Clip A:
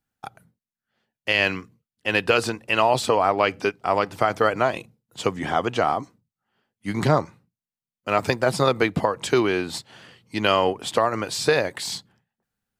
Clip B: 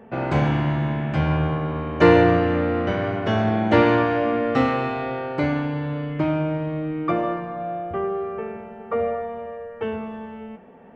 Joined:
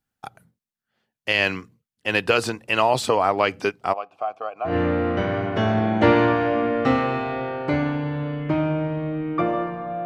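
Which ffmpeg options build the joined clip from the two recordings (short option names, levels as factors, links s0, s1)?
-filter_complex "[0:a]asplit=3[s0][s1][s2];[s0]afade=t=out:st=3.92:d=0.02[s3];[s1]asplit=3[s4][s5][s6];[s4]bandpass=f=730:t=q:w=8,volume=1[s7];[s5]bandpass=f=1090:t=q:w=8,volume=0.501[s8];[s6]bandpass=f=2440:t=q:w=8,volume=0.355[s9];[s7][s8][s9]amix=inputs=3:normalize=0,afade=t=in:st=3.92:d=0.02,afade=t=out:st=4.76:d=0.02[s10];[s2]afade=t=in:st=4.76:d=0.02[s11];[s3][s10][s11]amix=inputs=3:normalize=0,apad=whole_dur=10.05,atrim=end=10.05,atrim=end=4.76,asetpts=PTS-STARTPTS[s12];[1:a]atrim=start=2.34:end=7.75,asetpts=PTS-STARTPTS[s13];[s12][s13]acrossfade=d=0.12:c1=tri:c2=tri"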